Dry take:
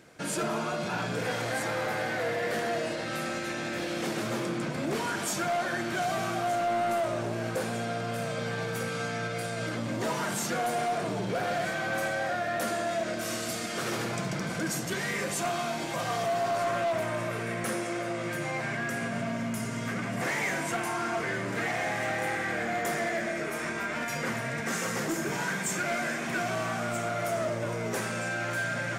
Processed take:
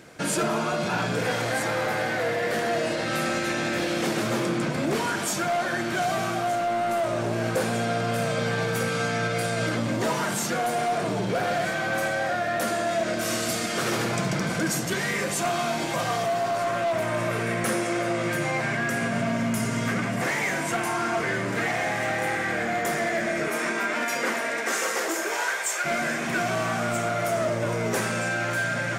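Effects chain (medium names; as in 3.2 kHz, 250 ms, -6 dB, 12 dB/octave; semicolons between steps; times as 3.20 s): 23.48–25.84 s: high-pass 180 Hz -> 530 Hz 24 dB/octave; gain riding 0.5 s; trim +5 dB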